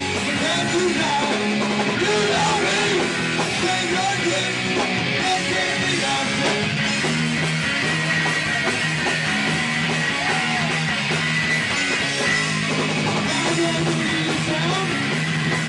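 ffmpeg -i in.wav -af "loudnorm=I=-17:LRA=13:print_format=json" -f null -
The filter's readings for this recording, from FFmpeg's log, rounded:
"input_i" : "-19.9",
"input_tp" : "-9.5",
"input_lra" : "1.0",
"input_thresh" : "-29.9",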